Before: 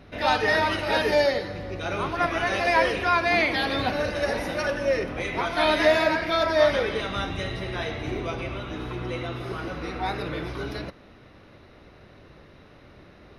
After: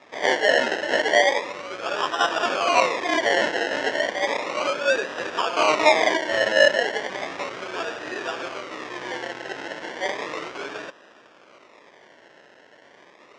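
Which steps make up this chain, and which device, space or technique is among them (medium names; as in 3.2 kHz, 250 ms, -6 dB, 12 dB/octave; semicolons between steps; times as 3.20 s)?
circuit-bent sampling toy (decimation with a swept rate 29×, swing 60% 0.34 Hz; cabinet simulation 550–5600 Hz, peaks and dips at 780 Hz -4 dB, 1.8 kHz +4 dB, 4.3 kHz -6 dB); trim +5.5 dB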